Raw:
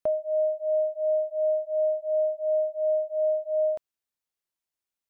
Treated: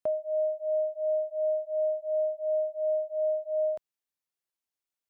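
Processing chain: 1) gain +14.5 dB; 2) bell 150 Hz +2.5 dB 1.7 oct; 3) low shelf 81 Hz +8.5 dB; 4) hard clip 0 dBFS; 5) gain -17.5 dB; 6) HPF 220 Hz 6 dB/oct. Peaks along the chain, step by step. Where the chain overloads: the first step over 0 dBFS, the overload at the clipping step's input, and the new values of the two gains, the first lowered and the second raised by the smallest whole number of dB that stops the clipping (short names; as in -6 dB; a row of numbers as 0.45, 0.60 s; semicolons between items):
-5.5, -4.5, -3.5, -3.5, -21.0, -22.5 dBFS; no overload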